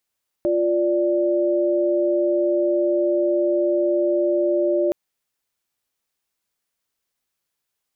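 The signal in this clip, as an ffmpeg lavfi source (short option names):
-f lavfi -i "aevalsrc='0.106*(sin(2*PI*349.23*t)+sin(2*PI*587.33*t))':d=4.47:s=44100"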